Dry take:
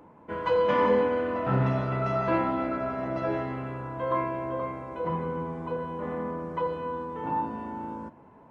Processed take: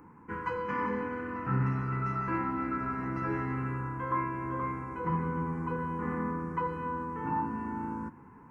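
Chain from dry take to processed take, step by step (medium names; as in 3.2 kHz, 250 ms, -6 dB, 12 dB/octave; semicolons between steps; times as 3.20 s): gain riding within 4 dB 0.5 s; static phaser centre 1.5 kHz, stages 4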